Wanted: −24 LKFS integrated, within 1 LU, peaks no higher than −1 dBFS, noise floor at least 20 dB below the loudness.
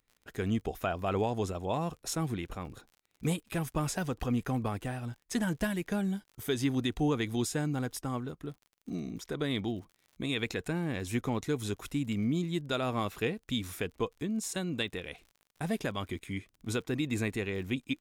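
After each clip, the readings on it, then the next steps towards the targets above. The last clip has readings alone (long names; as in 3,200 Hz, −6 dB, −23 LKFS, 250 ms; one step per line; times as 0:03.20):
crackle rate 51 per second; integrated loudness −34.0 LKFS; sample peak −19.5 dBFS; target loudness −24.0 LKFS
→ click removal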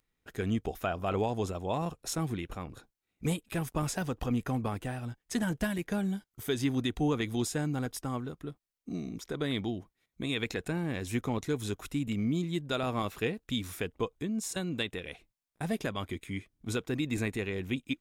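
crackle rate 0.28 per second; integrated loudness −34.0 LKFS; sample peak −19.5 dBFS; target loudness −24.0 LKFS
→ level +10 dB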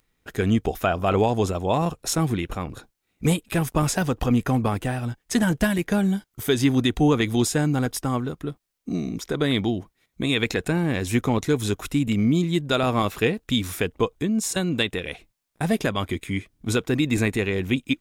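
integrated loudness −24.0 LKFS; sample peak −9.5 dBFS; background noise floor −76 dBFS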